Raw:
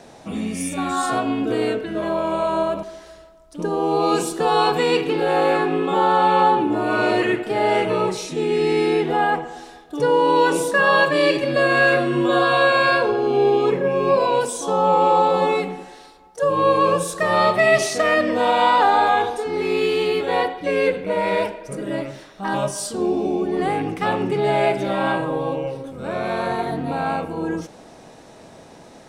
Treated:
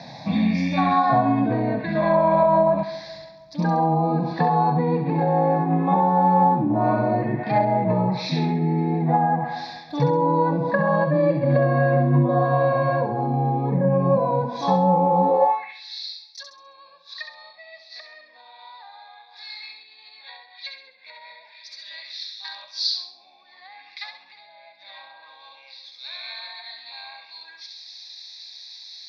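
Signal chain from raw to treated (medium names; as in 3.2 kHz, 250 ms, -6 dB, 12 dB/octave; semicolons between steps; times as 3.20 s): Chebyshev shaper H 3 -22 dB, 5 -33 dB, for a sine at -4.5 dBFS; low-pass that closes with the level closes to 530 Hz, closed at -17 dBFS; dynamic bell 1.3 kHz, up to +4 dB, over -41 dBFS, Q 1.5; high-pass sweep 140 Hz -> 4 kHz, 15.17–15.78 s; resonant high shelf 6.1 kHz -12.5 dB, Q 3; static phaser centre 2 kHz, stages 8; feedback echo behind a high-pass 67 ms, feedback 39%, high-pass 1.4 kHz, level -6 dB; trim +7 dB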